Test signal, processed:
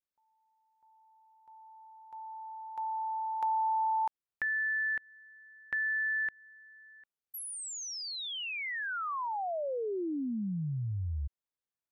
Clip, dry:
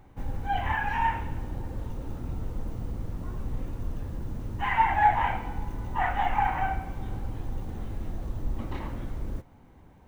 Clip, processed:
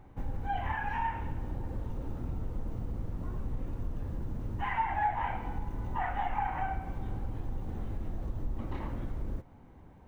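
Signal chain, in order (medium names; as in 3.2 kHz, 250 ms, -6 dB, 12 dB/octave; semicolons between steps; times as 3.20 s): compression 2:1, threshold -32 dBFS; treble shelf 2.6 kHz -7.5 dB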